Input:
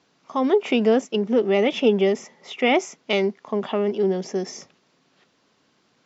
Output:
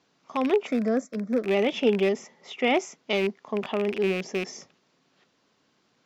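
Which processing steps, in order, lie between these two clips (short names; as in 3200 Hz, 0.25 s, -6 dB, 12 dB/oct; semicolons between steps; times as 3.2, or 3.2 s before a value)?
rattling part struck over -38 dBFS, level -18 dBFS; 0.67–1.46 fixed phaser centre 580 Hz, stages 8; gain -4 dB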